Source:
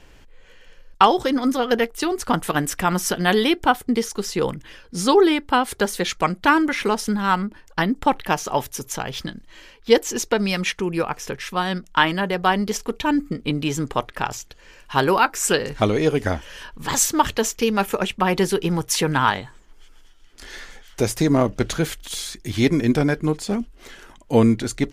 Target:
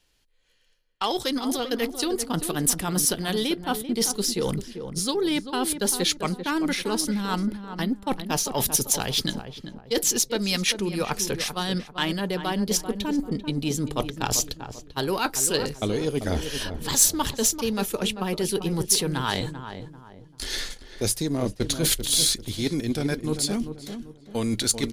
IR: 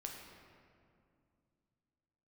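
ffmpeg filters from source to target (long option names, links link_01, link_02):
-filter_complex "[0:a]equalizer=frequency=4100:width=1.6:gain=9,acrossover=split=560[link_01][link_02];[link_01]dynaudnorm=framelen=180:gausssize=21:maxgain=14dB[link_03];[link_03][link_02]amix=inputs=2:normalize=0,equalizer=frequency=10000:width=5.4:gain=7,areverse,acompressor=threshold=-24dB:ratio=6,areverse,aeval=exprs='0.355*(cos(1*acos(clip(val(0)/0.355,-1,1)))-cos(1*PI/2))+0.00708*(cos(6*acos(clip(val(0)/0.355,-1,1)))-cos(6*PI/2))+0.00631*(cos(7*acos(clip(val(0)/0.355,-1,1)))-cos(7*PI/2))':channel_layout=same,crystalizer=i=2.5:c=0,agate=range=-21dB:threshold=-32dB:ratio=16:detection=peak,asplit=2[link_04][link_05];[link_05]adelay=391,lowpass=frequency=1300:poles=1,volume=-8.5dB,asplit=2[link_06][link_07];[link_07]adelay=391,lowpass=frequency=1300:poles=1,volume=0.37,asplit=2[link_08][link_09];[link_09]adelay=391,lowpass=frequency=1300:poles=1,volume=0.37,asplit=2[link_10][link_11];[link_11]adelay=391,lowpass=frequency=1300:poles=1,volume=0.37[link_12];[link_04][link_06][link_08][link_10][link_12]amix=inputs=5:normalize=0"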